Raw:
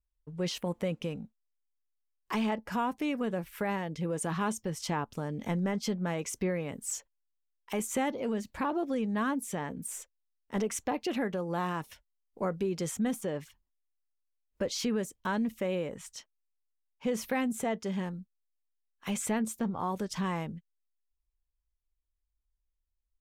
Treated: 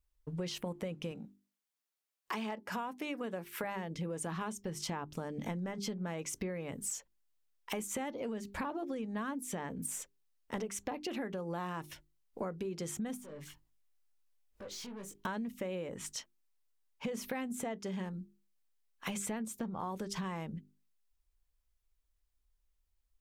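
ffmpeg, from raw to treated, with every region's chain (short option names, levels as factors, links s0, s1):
-filter_complex "[0:a]asettb=1/sr,asplit=3[s0][s1][s2];[s0]atrim=end=1.114[s3];[s1]atrim=start=1.11:end=3.64,asetpts=PTS-STARTPTS,afade=t=in:d=0.004:c=qsin,afade=t=out:st=2.526:d=0.004:c=qsin,highpass=f=280:p=1,asoftclip=type=hard:threshold=0.0794[s4];[s2]atrim=start=3.636[s5];[s3][s4]acrossfade=d=0.004:c1=hsin:c2=qsin[s6];[s6][s5]acrossfade=d=0.004:c1=qsin:c2=hsin,asettb=1/sr,asplit=3[s7][s8][s9];[s7]atrim=end=13.174[s10];[s8]atrim=start=13.17:end=15.14,asetpts=PTS-STARTPTS,afade=t=in:d=0.004:c=qsin,afade=t=out:st=1.966:d=0.004:c=qsin,acompressor=threshold=0.00355:ratio=3:attack=3.2:release=140:knee=1:detection=peak,aeval=exprs='(tanh(251*val(0)+0.2)-tanh(0.2))/251':c=same,asplit=2[s11][s12];[s12]adelay=20,volume=0.562[s13];[s11][s13]amix=inputs=2:normalize=0,atrim=end_sample=86877[s14];[s9]atrim=start=15.136[s15];[s10][s14]acrossfade=d=0.004:c1=hsin:c2=qsin[s16];[s16][s15]acrossfade=d=0.004:c1=qsin:c2=hsin,bandreject=f=50:t=h:w=6,bandreject=f=100:t=h:w=6,bandreject=f=150:t=h:w=6,bandreject=f=200:t=h:w=6,bandreject=f=250:t=h:w=6,bandreject=f=300:t=h:w=6,bandreject=f=350:t=h:w=6,bandreject=f=400:t=h:w=6,acompressor=threshold=0.00794:ratio=6,volume=1.88"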